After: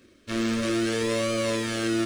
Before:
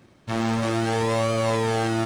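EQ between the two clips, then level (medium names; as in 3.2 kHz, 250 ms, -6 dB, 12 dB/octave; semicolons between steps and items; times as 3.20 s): hum notches 50/100/150/200/250/300/350/400/450 Hz; static phaser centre 340 Hz, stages 4; band-stop 2 kHz, Q 26; +2.0 dB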